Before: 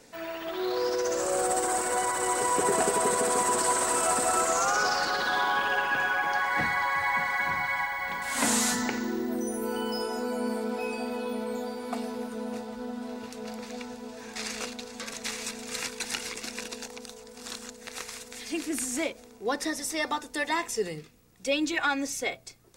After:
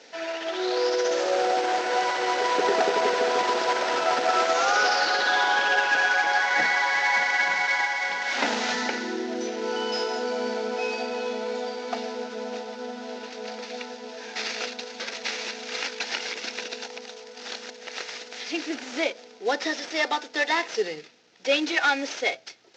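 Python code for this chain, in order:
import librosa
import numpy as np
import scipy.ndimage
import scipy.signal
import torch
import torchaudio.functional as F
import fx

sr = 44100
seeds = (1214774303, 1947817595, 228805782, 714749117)

y = fx.cvsd(x, sr, bps=32000)
y = scipy.signal.sosfilt(scipy.signal.butter(2, 410.0, 'highpass', fs=sr, output='sos'), y)
y = fx.peak_eq(y, sr, hz=1100.0, db=-12.5, octaves=0.2)
y = y * librosa.db_to_amplitude(6.5)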